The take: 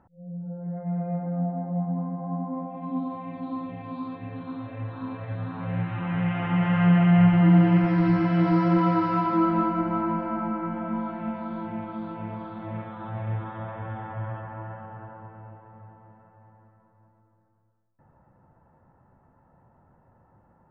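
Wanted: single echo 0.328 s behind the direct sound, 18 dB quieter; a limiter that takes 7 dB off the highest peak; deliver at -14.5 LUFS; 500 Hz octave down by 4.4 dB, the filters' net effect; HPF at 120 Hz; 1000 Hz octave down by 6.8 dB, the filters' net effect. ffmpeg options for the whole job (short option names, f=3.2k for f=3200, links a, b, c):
-af "highpass=120,equalizer=f=500:t=o:g=-5,equalizer=f=1k:t=o:g=-7.5,alimiter=limit=-17.5dB:level=0:latency=1,aecho=1:1:328:0.126,volume=15.5dB"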